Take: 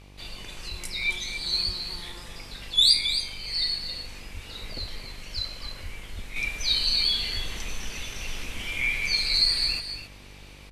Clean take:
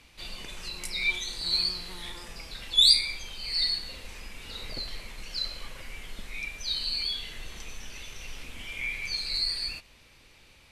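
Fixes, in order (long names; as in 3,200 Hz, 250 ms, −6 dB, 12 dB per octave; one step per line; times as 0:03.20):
hum removal 49.2 Hz, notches 24
high-pass at the plosives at 0:00.70/0:01.65/0:04.33/0:04.79/0:05.35/0:05.82/0:06.14/0:07.33
echo removal 270 ms −9 dB
level correction −6.5 dB, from 0:06.36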